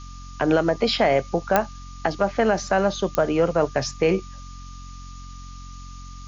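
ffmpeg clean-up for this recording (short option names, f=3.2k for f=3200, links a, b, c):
-af "adeclick=t=4,bandreject=f=45:t=h:w=4,bandreject=f=90:t=h:w=4,bandreject=f=135:t=h:w=4,bandreject=f=180:t=h:w=4,bandreject=f=225:t=h:w=4,bandreject=f=270:t=h:w=4,bandreject=f=1.2k:w=30,afftdn=nr=29:nf=-39"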